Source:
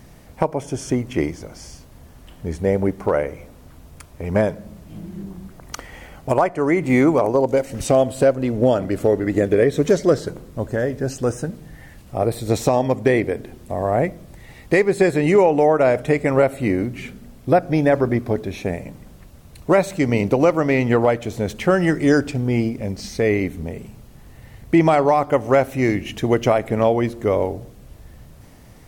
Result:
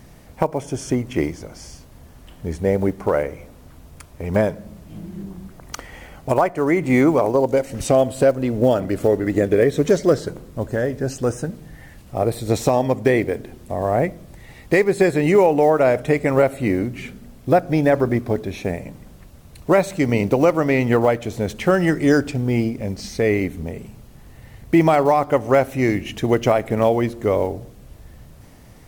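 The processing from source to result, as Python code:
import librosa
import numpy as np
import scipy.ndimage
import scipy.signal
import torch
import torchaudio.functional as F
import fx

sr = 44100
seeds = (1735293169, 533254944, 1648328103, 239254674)

y = fx.block_float(x, sr, bits=7)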